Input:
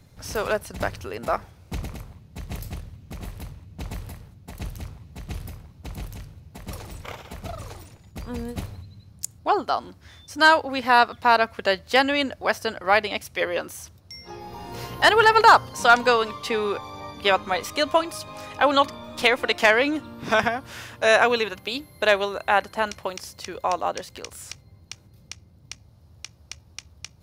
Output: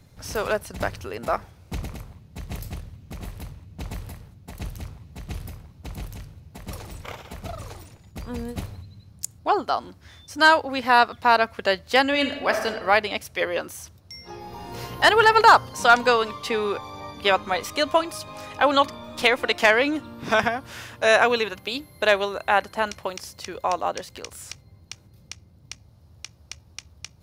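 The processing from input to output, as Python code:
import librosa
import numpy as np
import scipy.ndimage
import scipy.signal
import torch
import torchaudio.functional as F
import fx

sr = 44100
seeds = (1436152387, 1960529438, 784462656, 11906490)

y = fx.reverb_throw(x, sr, start_s=12.08, length_s=0.59, rt60_s=1.1, drr_db=4.5)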